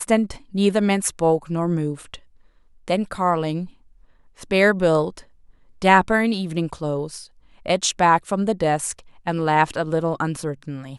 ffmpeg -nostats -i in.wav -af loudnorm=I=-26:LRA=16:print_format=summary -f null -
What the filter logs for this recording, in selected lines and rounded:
Input Integrated:    -21.4 LUFS
Input True Peak:      -1.1 dBTP
Input LRA:             2.3 LU
Input Threshold:     -32.2 LUFS